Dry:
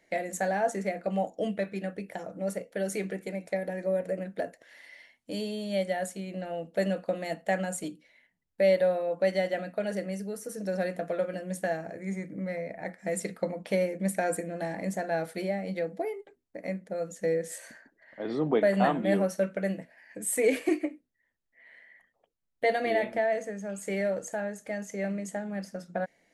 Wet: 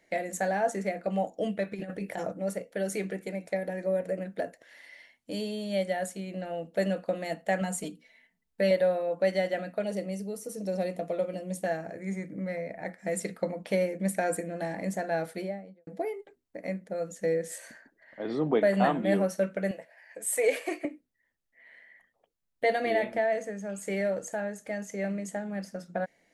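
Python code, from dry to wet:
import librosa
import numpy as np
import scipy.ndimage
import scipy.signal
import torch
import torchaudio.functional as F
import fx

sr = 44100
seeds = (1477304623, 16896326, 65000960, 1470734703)

y = fx.over_compress(x, sr, threshold_db=-37.0, ratio=-0.5, at=(1.71, 2.32), fade=0.02)
y = fx.comb(y, sr, ms=4.5, depth=0.65, at=(7.61, 8.71))
y = fx.peak_eq(y, sr, hz=1600.0, db=-14.0, octaves=0.41, at=(9.83, 11.66))
y = fx.studio_fade_out(y, sr, start_s=15.24, length_s=0.63)
y = fx.low_shelf_res(y, sr, hz=370.0, db=-13.0, q=1.5, at=(19.71, 20.85))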